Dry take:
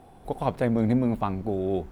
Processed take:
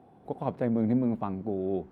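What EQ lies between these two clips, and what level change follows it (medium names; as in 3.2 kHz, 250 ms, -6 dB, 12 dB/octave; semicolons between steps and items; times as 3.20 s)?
high-pass 150 Hz 12 dB/octave; low-pass 2 kHz 6 dB/octave; bass shelf 460 Hz +7 dB; -7.0 dB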